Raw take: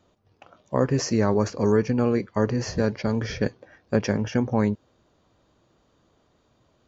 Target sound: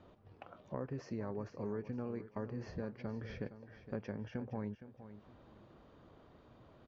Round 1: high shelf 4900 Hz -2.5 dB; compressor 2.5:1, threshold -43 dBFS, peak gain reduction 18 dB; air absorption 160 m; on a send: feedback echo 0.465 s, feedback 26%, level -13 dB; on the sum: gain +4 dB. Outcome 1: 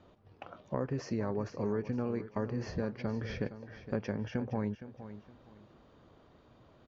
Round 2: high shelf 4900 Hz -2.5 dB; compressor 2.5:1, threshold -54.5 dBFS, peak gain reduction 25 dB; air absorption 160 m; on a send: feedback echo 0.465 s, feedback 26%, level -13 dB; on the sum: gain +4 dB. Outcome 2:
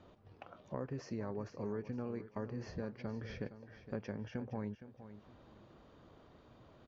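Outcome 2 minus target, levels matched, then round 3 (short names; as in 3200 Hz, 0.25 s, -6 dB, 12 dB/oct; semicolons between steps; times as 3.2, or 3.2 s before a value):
8000 Hz band +4.5 dB
high shelf 4900 Hz -10 dB; compressor 2.5:1, threshold -54.5 dBFS, peak gain reduction 25 dB; air absorption 160 m; on a send: feedback echo 0.465 s, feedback 26%, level -13 dB; on the sum: gain +4 dB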